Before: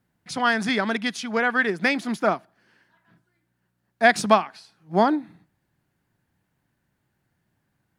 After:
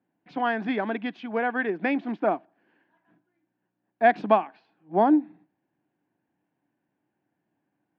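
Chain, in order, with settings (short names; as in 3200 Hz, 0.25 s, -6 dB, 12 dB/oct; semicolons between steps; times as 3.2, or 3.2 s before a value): speaker cabinet 220–2600 Hz, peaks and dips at 300 Hz +9 dB, 750 Hz +4 dB, 1300 Hz -8 dB, 2000 Hz -6 dB; gain -3 dB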